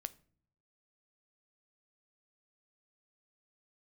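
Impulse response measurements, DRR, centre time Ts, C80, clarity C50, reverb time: 13.5 dB, 2 ms, 25.5 dB, 20.5 dB, non-exponential decay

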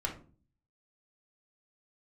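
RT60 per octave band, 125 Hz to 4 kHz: 0.75, 0.65, 0.45, 0.35, 0.30, 0.25 seconds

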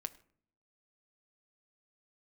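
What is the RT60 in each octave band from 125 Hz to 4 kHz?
0.85, 0.80, 0.60, 0.50, 0.45, 0.40 seconds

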